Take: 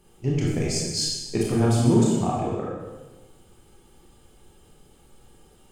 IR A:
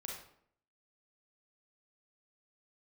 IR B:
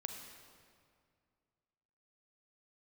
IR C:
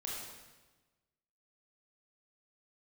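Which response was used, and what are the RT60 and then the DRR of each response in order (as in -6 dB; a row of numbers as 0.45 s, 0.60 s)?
C; 0.65 s, 2.2 s, 1.2 s; -1.5 dB, 4.0 dB, -4.5 dB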